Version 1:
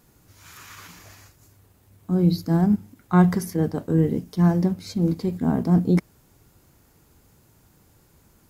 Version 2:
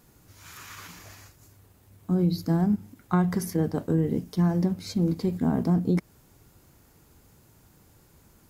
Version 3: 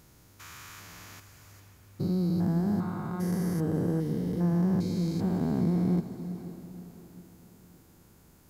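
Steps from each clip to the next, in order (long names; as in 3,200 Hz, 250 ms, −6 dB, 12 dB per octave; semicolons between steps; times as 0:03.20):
downward compressor 4 to 1, threshold −20 dBFS, peak gain reduction 8.5 dB
spectrum averaged block by block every 400 ms; feedback delay with all-pass diffusion 506 ms, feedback 42%, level −12 dB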